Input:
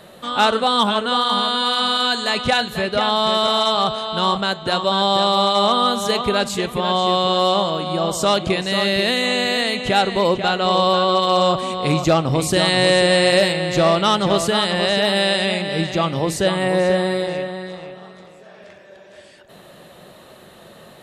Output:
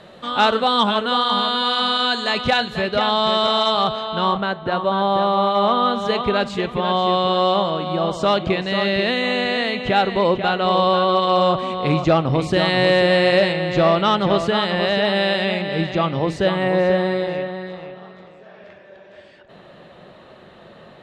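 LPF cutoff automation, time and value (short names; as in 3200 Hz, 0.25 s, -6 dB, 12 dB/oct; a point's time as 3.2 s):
3.74 s 4900 Hz
4.62 s 1900 Hz
5.36 s 1900 Hz
6.22 s 3200 Hz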